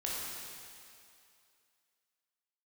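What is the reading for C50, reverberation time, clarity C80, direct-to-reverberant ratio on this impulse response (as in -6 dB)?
-2.5 dB, 2.5 s, -0.5 dB, -6.0 dB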